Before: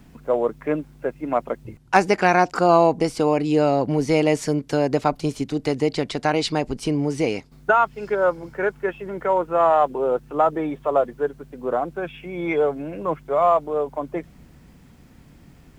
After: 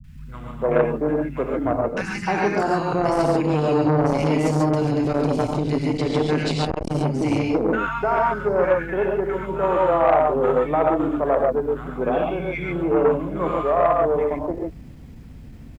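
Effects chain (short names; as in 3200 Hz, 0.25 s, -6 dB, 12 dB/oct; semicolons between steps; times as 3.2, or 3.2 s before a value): tone controls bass +10 dB, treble -4 dB; limiter -9 dBFS, peak gain reduction 8 dB; three bands offset in time lows, highs, mids 40/340 ms, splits 170/1300 Hz; non-linear reverb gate 0.16 s rising, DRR -0.5 dB; core saturation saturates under 790 Hz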